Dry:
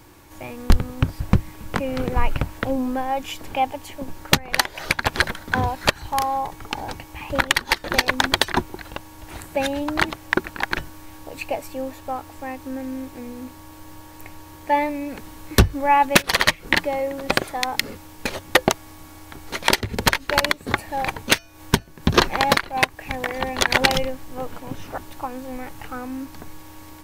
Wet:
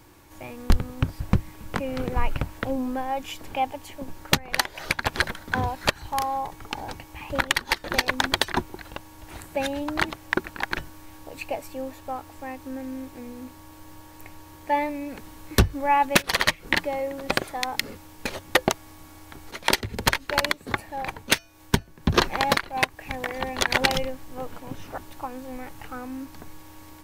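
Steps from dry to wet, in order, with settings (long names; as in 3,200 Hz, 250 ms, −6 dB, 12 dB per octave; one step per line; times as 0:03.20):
0:19.51–0:22.16: multiband upward and downward expander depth 40%
level −4 dB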